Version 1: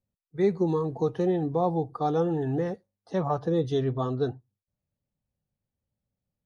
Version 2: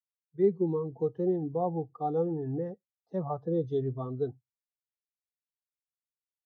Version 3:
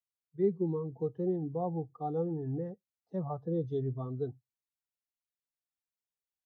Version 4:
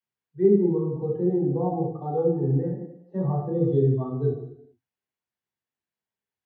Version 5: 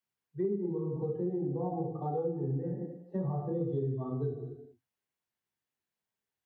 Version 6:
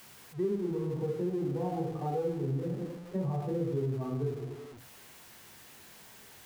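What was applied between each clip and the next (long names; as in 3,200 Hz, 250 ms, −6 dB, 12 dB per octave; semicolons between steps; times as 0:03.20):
every bin expanded away from the loudest bin 1.5 to 1; level −1.5 dB
bass and treble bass +5 dB, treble 0 dB; level −5 dB
convolution reverb RT60 0.85 s, pre-delay 3 ms, DRR −4.5 dB; level −6.5 dB
downward compressor 5 to 1, threshold −31 dBFS, peak gain reduction 15.5 dB
converter with a step at zero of −45 dBFS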